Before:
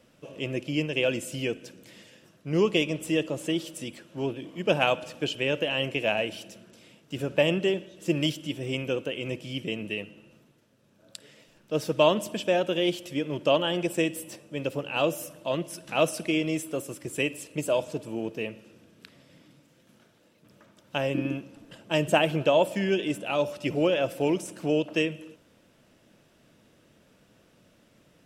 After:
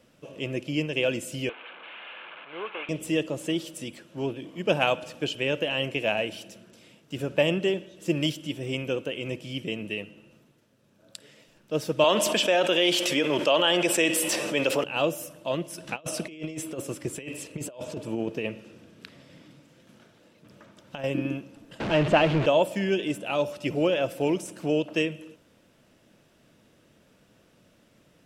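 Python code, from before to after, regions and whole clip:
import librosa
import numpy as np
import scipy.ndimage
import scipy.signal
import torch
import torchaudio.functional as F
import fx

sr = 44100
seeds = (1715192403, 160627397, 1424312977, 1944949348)

y = fx.chain(x, sr, fx.delta_mod(bps=16000, step_db=-32.0),
    fx.highpass(hz=910.0, slope=12),
    fx.notch(hz=1900.0, q=7.0), at=(1.49, 2.89))
y = fx.chain(y, sr, fx.weighting(curve='A'),
    fx.env_flatten(amount_pct=70), at=(12.04, 14.84))
y = fx.chain(y, sr, fx.high_shelf(hz=10000.0, db=-9.0),
    fx.over_compress(threshold_db=-32.0, ratio=-0.5), at=(15.78, 21.04))
y = fx.chain(y, sr, fx.zero_step(step_db=-23.5),
    fx.lowpass(hz=3000.0, slope=12), at=(21.8, 22.46))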